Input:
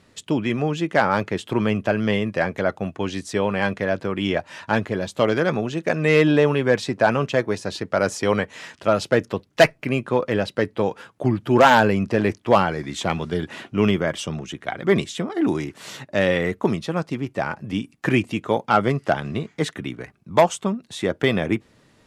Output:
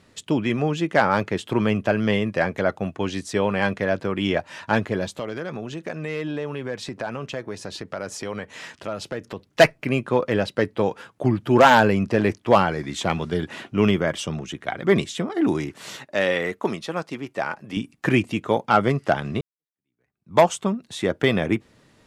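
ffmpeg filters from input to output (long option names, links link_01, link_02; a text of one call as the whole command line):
ffmpeg -i in.wav -filter_complex "[0:a]asettb=1/sr,asplit=3[link_01][link_02][link_03];[link_01]atrim=end=5.154[link_04];[link_02]atrim=start=5.15:end=9.45,asetpts=PTS-STARTPTS,afade=type=in:duration=0.004:curve=qsin,afade=type=out:start_time=4.296:duration=0.004:curve=qsin,acompressor=threshold=-31dB:ratio=2.5:attack=3.2:release=140:knee=1:detection=peak[link_05];[link_03]atrim=start=9.446[link_06];[link_04][link_05]acrossfade=duration=0.004:curve1=hsin:curve2=qsin[link_07];[link_07][link_06]acrossfade=duration=0.004:curve1=qsin:curve2=hsin,asettb=1/sr,asplit=3[link_08][link_09][link_10];[link_08]atrim=end=15.964[link_11];[link_09]atrim=start=15.96:end=17.77,asetpts=PTS-STARTPTS,afade=type=in:duration=0.004:curve=qsin,afade=type=out:start_time=1.806:duration=0.004:curve=qsin,highpass=frequency=410:poles=1[link_12];[link_10]atrim=start=17.766[link_13];[link_11][link_12]acrossfade=duration=0.004:curve1=hsin:curve2=qsin[link_14];[link_14][link_13]acrossfade=duration=0.004:curve1=qsin:curve2=hsin,asplit=2[link_15][link_16];[link_15]atrim=end=19.41,asetpts=PTS-STARTPTS,afade=type=out:start_time=19.406:duration=0.004:curve=hsin[link_17];[link_16]atrim=start=19.41,asetpts=PTS-STARTPTS,afade=type=in:duration=0.97:curve=exp[link_18];[link_17][link_18]concat=n=2:v=0:a=1" out.wav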